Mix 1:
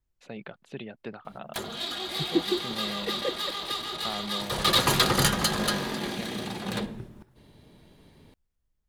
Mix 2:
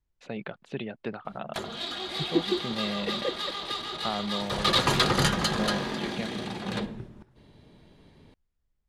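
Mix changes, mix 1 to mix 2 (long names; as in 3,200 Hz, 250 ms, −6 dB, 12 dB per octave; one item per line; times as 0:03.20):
first voice +4.5 dB
master: add high-frequency loss of the air 55 metres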